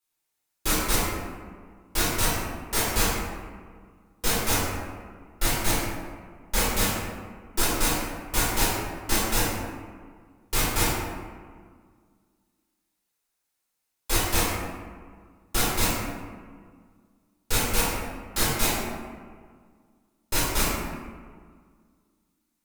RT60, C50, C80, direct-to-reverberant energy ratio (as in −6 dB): 1.8 s, −1.5 dB, 0.5 dB, −10.0 dB